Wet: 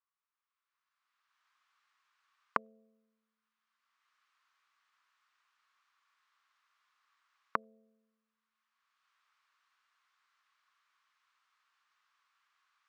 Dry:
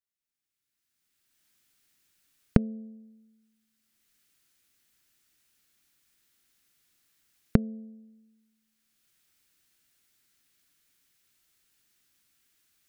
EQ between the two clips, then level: resonant high-pass 1.1 kHz, resonance Q 7; distance through air 130 m; treble shelf 3.3 kHz -6.5 dB; 0.0 dB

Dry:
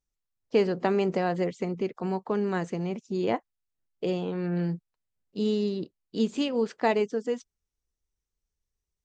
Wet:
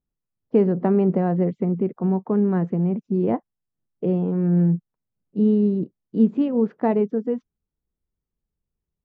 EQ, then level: low-pass 1.3 kHz 12 dB/octave; peaking EQ 180 Hz +11 dB 1.9 oct; 0.0 dB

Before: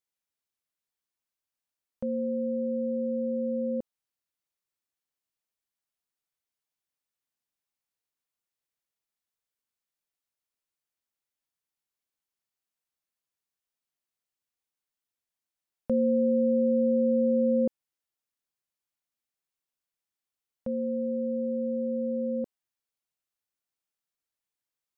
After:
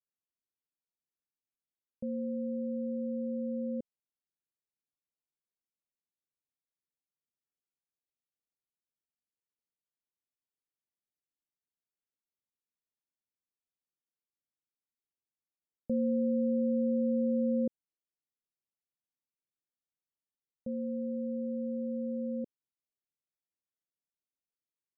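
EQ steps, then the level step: Gaussian low-pass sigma 17 samples; distance through air 150 m; bass shelf 120 Hz -9.5 dB; 0.0 dB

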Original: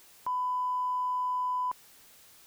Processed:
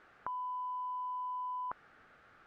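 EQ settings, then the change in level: resonant low-pass 1.4 kHz, resonance Q 3; peaking EQ 990 Hz -15 dB 0.2 oct; +1.0 dB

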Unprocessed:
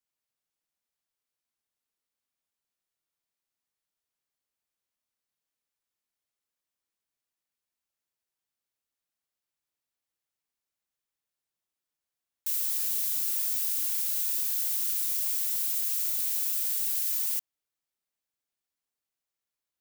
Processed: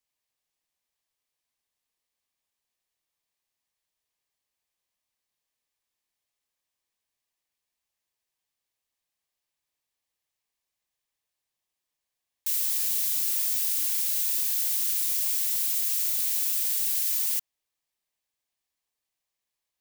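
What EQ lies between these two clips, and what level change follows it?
peaking EQ 240 Hz -5 dB 2.3 oct; treble shelf 8.1 kHz -3.5 dB; band-stop 1.4 kHz, Q 5.3; +5.5 dB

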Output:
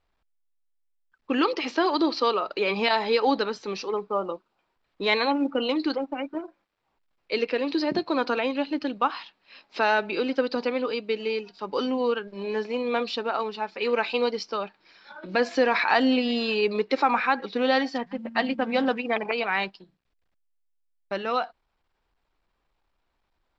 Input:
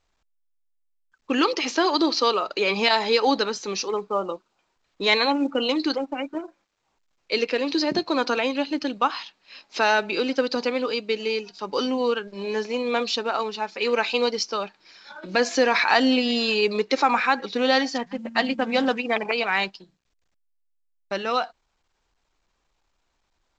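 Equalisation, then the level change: treble shelf 4.8 kHz -10.5 dB; peaking EQ 6.5 kHz -9.5 dB 0.34 oct; -1.5 dB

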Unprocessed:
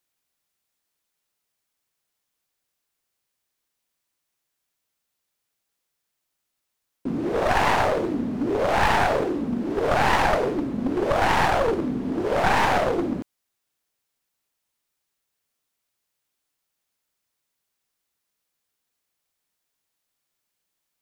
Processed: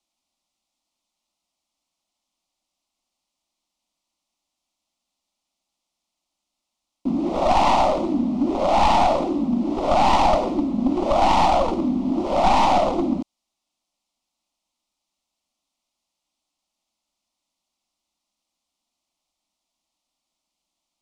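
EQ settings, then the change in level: low-pass 6.1 kHz 12 dB/octave; static phaser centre 440 Hz, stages 6; +5.5 dB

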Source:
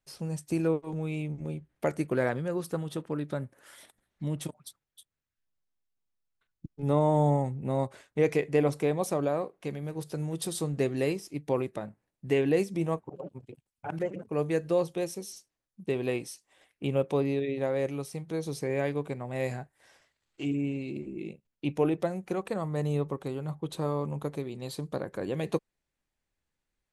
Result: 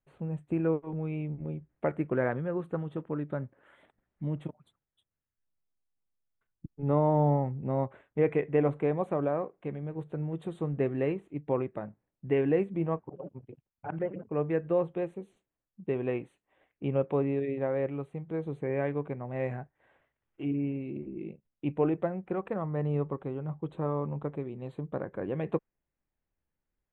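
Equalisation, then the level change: dynamic bell 1.5 kHz, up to +4 dB, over -42 dBFS, Q 0.8; Butterworth band-stop 5.2 kHz, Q 1.1; tape spacing loss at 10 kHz 33 dB; 0.0 dB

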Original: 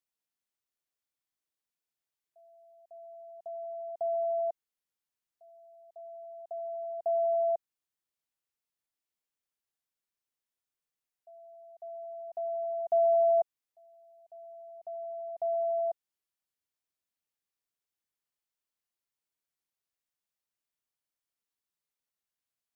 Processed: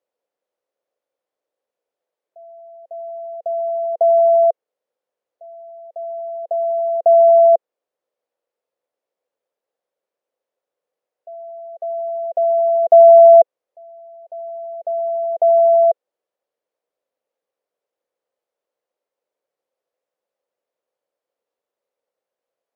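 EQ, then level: resonant high-pass 520 Hz, resonance Q 5.4; tilt EQ -4.5 dB/octave; +8.0 dB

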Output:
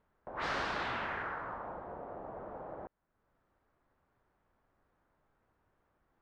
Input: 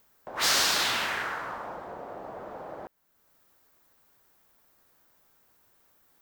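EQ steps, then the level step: low-pass 1.6 kHz 12 dB/octave; bass shelf 93 Hz +10 dB; -4.5 dB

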